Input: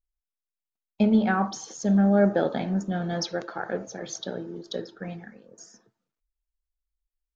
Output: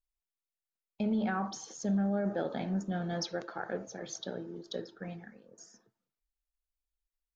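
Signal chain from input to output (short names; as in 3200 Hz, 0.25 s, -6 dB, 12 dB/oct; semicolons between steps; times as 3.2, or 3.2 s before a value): limiter -17.5 dBFS, peak gain reduction 9 dB; gain -6 dB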